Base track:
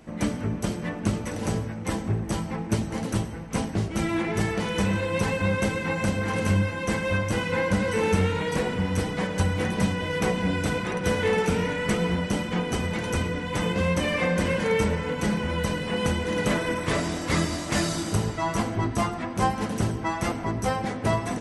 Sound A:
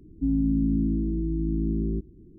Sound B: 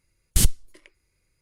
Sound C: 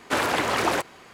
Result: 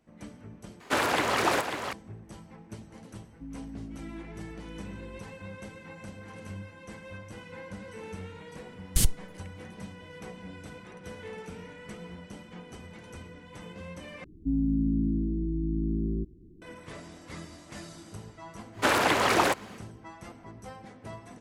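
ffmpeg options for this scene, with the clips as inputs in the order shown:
ffmpeg -i bed.wav -i cue0.wav -i cue1.wav -i cue2.wav -filter_complex "[3:a]asplit=2[link_01][link_02];[1:a]asplit=2[link_03][link_04];[0:a]volume=-18.5dB[link_05];[link_01]aecho=1:1:543:0.422[link_06];[link_05]asplit=3[link_07][link_08][link_09];[link_07]atrim=end=0.804[link_10];[link_06]atrim=end=1.13,asetpts=PTS-STARTPTS,volume=-2.5dB[link_11];[link_08]atrim=start=1.926:end=14.244[link_12];[link_04]atrim=end=2.38,asetpts=PTS-STARTPTS,volume=-3dB[link_13];[link_09]atrim=start=16.616[link_14];[link_03]atrim=end=2.38,asetpts=PTS-STARTPTS,volume=-18dB,afade=type=in:duration=0.004:curve=hsin,afade=type=out:start_time=2.376:duration=0.004:curve=hsin,adelay=3190[link_15];[2:a]atrim=end=1.41,asetpts=PTS-STARTPTS,volume=-5dB,afade=type=in:duration=0.004:curve=hsin,afade=type=out:start_time=1.406:duration=0.004:curve=hsin,adelay=8600[link_16];[link_02]atrim=end=1.13,asetpts=PTS-STARTPTS,afade=type=in:duration=0.1,afade=type=out:start_time=1.03:duration=0.1,adelay=18720[link_17];[link_10][link_11]acrossfade=duration=0.004:curve1=hsin:curve2=hsin[link_18];[link_18][link_12]acrossfade=duration=0.004:curve1=hsin:curve2=hsin[link_19];[link_19][link_13]acrossfade=duration=0.004:curve1=hsin:curve2=hsin[link_20];[link_20][link_14]acrossfade=duration=0.004:curve1=hsin:curve2=hsin[link_21];[link_21][link_15][link_16][link_17]amix=inputs=4:normalize=0" out.wav

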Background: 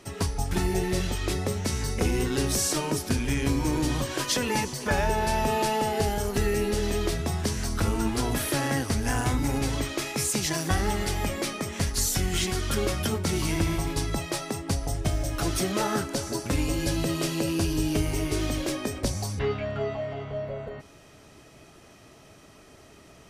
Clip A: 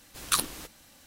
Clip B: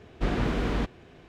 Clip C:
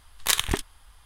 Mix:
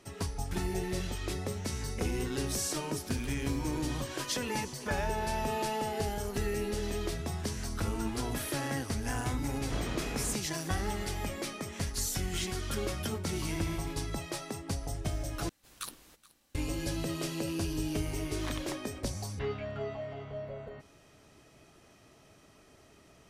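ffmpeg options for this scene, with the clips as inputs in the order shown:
ffmpeg -i bed.wav -i cue0.wav -i cue1.wav -i cue2.wav -filter_complex "[1:a]asplit=2[link_01][link_02];[0:a]volume=-7.5dB[link_03];[link_01]acompressor=threshold=-35dB:ratio=6:attack=3.2:release=140:knee=1:detection=peak[link_04];[link_02]aecho=1:1:425:0.0891[link_05];[3:a]bandpass=frequency=910:width_type=q:width=0.9:csg=0[link_06];[link_03]asplit=2[link_07][link_08];[link_07]atrim=end=15.494[link_09];[link_05]atrim=end=1.06,asetpts=PTS-STARTPTS,volume=-15.5dB[link_10];[link_08]atrim=start=16.546[link_11];[link_04]atrim=end=1.06,asetpts=PTS-STARTPTS,volume=-14.5dB,afade=type=in:duration=0.004:curve=hsin,afade=type=out:start_time=1.056:duration=0.004:curve=hsin,adelay=2920[link_12];[2:a]atrim=end=1.28,asetpts=PTS-STARTPTS,volume=-10dB,afade=type=in:duration=0.004:curve=hsin,afade=type=out:start_time=1.276:duration=0.004:curve=hsin,adelay=9490[link_13];[link_06]atrim=end=1.05,asetpts=PTS-STARTPTS,volume=-11.5dB,afade=type=in:duration=0.004:curve=hsin,afade=type=out:start_time=1.046:duration=0.004:curve=hsin,adelay=18180[link_14];[link_09][link_10]acrossfade=duration=0.004:curve1=hsin:curve2=hsin[link_15];[link_15][link_11]acrossfade=duration=0.004:curve1=hsin:curve2=hsin[link_16];[link_16][link_12][link_13][link_14]amix=inputs=4:normalize=0" out.wav

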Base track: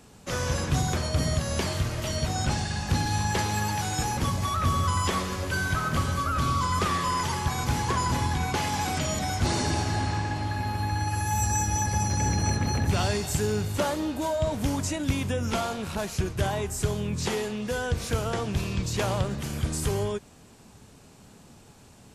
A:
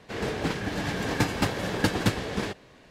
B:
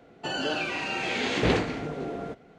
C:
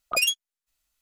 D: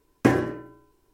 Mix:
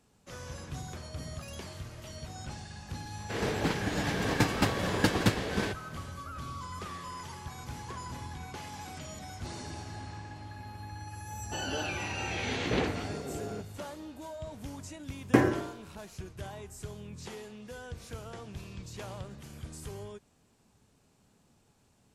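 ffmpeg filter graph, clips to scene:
ffmpeg -i bed.wav -i cue0.wav -i cue1.wav -i cue2.wav -i cue3.wav -filter_complex "[0:a]volume=-15dB[link_01];[3:a]acompressor=threshold=-33dB:ratio=6:attack=3.2:release=140:knee=1:detection=peak,atrim=end=1.01,asetpts=PTS-STARTPTS,volume=-15dB,afade=type=in:duration=0.004:curve=hsin,afade=type=out:start_time=1.006:duration=0.004:curve=hsin,adelay=1260[link_02];[1:a]atrim=end=2.9,asetpts=PTS-STARTPTS,volume=-1.5dB,afade=type=in:duration=0.004:curve=hsin,afade=type=out:start_time=2.896:duration=0.004:curve=hsin,adelay=3200[link_03];[2:a]atrim=end=2.58,asetpts=PTS-STARTPTS,volume=-6dB,afade=type=in:duration=0.004:curve=hsin,afade=type=out:start_time=2.576:duration=0.004:curve=hsin,adelay=11280[link_04];[4:a]atrim=end=1.13,asetpts=PTS-STARTPTS,volume=-3dB,afade=type=in:duration=0.004:curve=hsin,afade=type=out:start_time=1.126:duration=0.004:curve=hsin,adelay=15090[link_05];[link_01][link_02][link_03][link_04][link_05]amix=inputs=5:normalize=0" out.wav

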